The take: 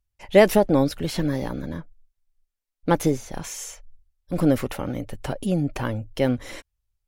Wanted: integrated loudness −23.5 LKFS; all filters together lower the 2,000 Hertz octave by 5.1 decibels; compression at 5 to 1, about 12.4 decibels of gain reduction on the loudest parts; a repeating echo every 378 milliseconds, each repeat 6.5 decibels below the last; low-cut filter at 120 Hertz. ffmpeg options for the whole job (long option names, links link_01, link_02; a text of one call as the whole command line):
ffmpeg -i in.wav -af "highpass=120,equalizer=frequency=2000:width_type=o:gain=-6,acompressor=threshold=-23dB:ratio=5,aecho=1:1:378|756|1134|1512|1890|2268:0.473|0.222|0.105|0.0491|0.0231|0.0109,volume=6.5dB" out.wav